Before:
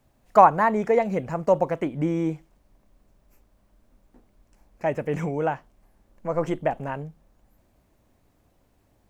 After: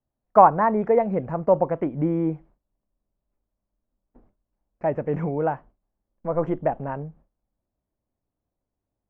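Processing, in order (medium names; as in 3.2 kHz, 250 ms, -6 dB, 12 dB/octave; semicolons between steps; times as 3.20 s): low-pass 1.3 kHz 12 dB/octave; gate with hold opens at -45 dBFS; trim +1.5 dB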